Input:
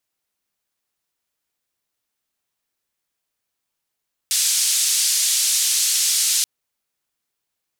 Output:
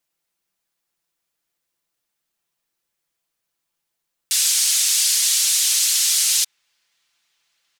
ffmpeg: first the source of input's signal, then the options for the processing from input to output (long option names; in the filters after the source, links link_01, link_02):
-f lavfi -i "anoisesrc=color=white:duration=2.13:sample_rate=44100:seed=1,highpass=frequency=4500,lowpass=frequency=8700,volume=-7.1dB"
-filter_complex "[0:a]aecho=1:1:5.9:0.49,asplit=2[link_01][link_02];[link_02]adelay=1691,volume=-29dB,highshelf=frequency=4000:gain=-38[link_03];[link_01][link_03]amix=inputs=2:normalize=0"